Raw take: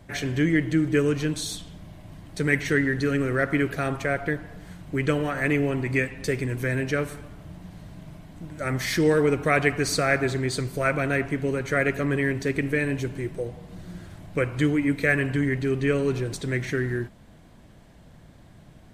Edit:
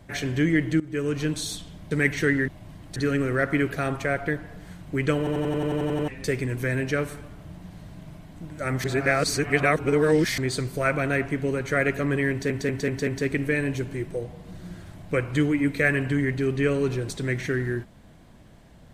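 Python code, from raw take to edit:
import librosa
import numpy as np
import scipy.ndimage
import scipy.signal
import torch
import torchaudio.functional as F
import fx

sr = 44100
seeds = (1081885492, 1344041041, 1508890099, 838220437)

y = fx.edit(x, sr, fx.fade_in_from(start_s=0.8, length_s=0.45, floor_db=-18.5),
    fx.move(start_s=1.91, length_s=0.48, to_s=2.96),
    fx.stutter_over(start_s=5.18, slice_s=0.09, count=10),
    fx.reverse_span(start_s=8.84, length_s=1.54),
    fx.stutter(start_s=12.31, slice_s=0.19, count=5), tone=tone)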